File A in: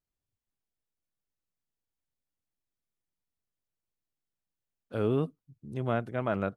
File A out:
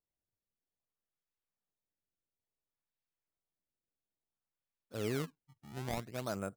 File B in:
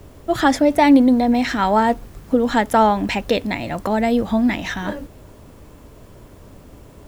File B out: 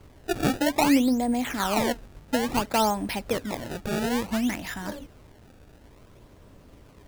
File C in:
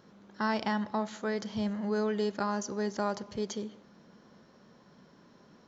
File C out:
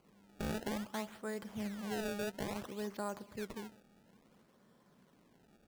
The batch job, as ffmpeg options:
ffmpeg -i in.wav -af "acrusher=samples=24:mix=1:aa=0.000001:lfo=1:lforange=38.4:lforate=0.58,volume=-8.5dB" out.wav

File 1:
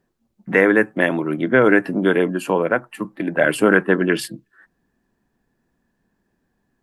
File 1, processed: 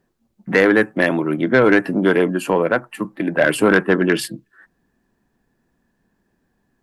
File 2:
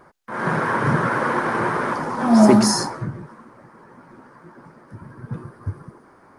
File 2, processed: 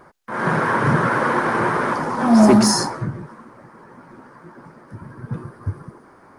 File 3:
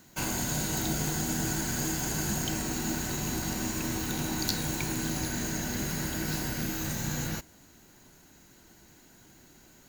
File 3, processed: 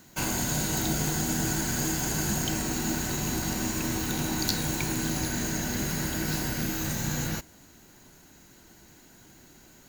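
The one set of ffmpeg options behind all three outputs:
ffmpeg -i in.wav -af "asoftclip=type=tanh:threshold=-6.5dB,volume=2.5dB" out.wav

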